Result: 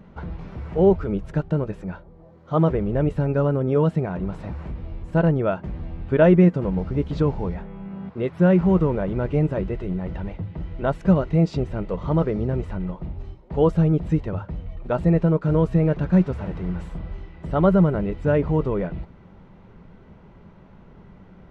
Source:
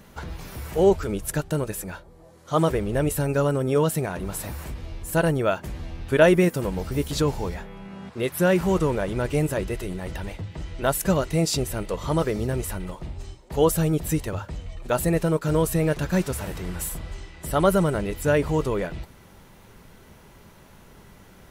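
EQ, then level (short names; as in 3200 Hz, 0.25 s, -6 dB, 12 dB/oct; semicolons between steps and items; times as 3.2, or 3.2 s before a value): tape spacing loss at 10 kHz 40 dB; bell 180 Hz +6 dB 0.35 oct; notch 1700 Hz, Q 21; +2.5 dB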